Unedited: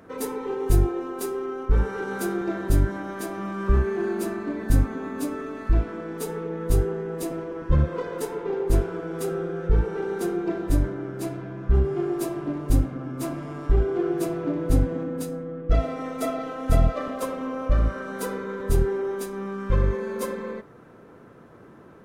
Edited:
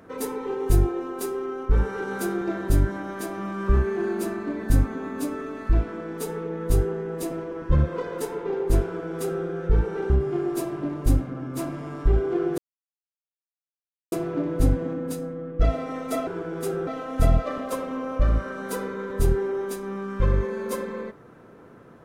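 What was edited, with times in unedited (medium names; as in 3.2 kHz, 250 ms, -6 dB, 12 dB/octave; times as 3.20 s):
8.85–9.45 s: copy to 16.37 s
10.10–11.74 s: delete
14.22 s: insert silence 1.54 s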